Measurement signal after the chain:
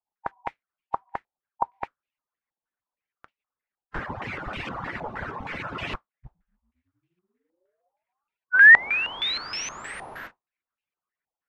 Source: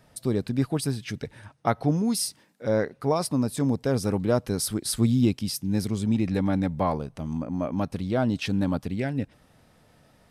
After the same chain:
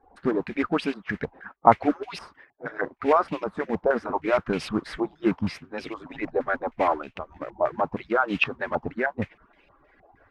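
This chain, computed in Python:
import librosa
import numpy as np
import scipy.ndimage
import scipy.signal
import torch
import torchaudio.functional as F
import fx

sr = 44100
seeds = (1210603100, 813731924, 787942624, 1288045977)

y = fx.hpss_only(x, sr, part='percussive')
y = fx.mod_noise(y, sr, seeds[0], snr_db=14)
y = fx.filter_held_lowpass(y, sr, hz=6.4, low_hz=840.0, high_hz=2600.0)
y = F.gain(torch.from_numpy(y), 3.0).numpy()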